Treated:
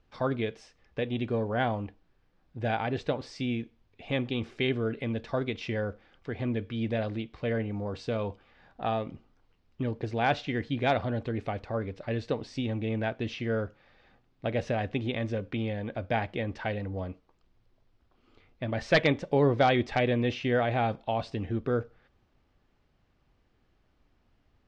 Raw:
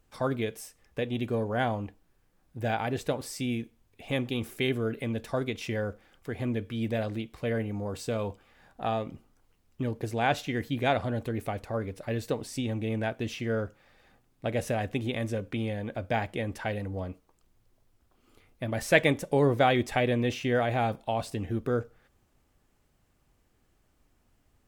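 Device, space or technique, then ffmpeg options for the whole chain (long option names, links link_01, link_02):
synthesiser wavefolder: -af "aeval=exprs='0.211*(abs(mod(val(0)/0.211+3,4)-2)-1)':channel_layout=same,lowpass=frequency=4900:width=0.5412,lowpass=frequency=4900:width=1.3066"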